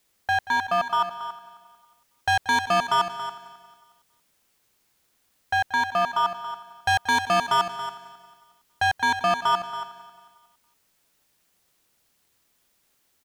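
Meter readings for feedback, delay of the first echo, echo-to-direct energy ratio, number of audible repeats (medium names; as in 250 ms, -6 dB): no regular repeats, 181 ms, -9.5 dB, 7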